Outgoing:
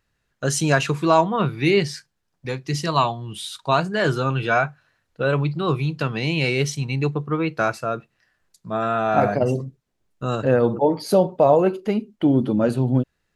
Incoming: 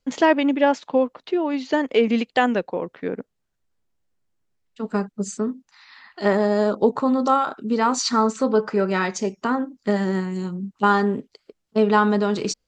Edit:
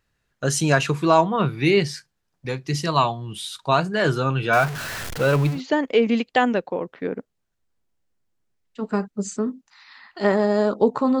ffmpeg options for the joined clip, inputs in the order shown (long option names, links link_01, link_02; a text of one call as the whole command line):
ffmpeg -i cue0.wav -i cue1.wav -filter_complex "[0:a]asettb=1/sr,asplit=3[link_01][link_02][link_03];[link_01]atrim=end=4.534[link_04];[link_02]atrim=start=4.53:end=5.61,asetpts=PTS-STARTPTS,afade=type=in:duration=0.004:curve=qsin,afade=type=out:start_time=1.076:duration=0.004:curve=qsin,aeval=exprs='val(0)+0.5*0.0562*sgn(val(0))':channel_layout=same[link_05];[link_03]atrim=start=5.606[link_06];[link_04][link_05]acrossfade=duration=0.004:curve1=hsin:curve2=qsin[link_07];[link_07][link_06]acrossfade=duration=0.004:curve1=qsin:curve2=hsin,apad=whole_dur=11.2,atrim=end=11.2,atrim=end=5.61,asetpts=PTS-STARTPTS[link_08];[1:a]atrim=start=1.5:end=7.21,asetpts=PTS-STARTPTS[link_09];[link_08][link_09]acrossfade=duration=0.12:curve1=tri:curve2=tri" out.wav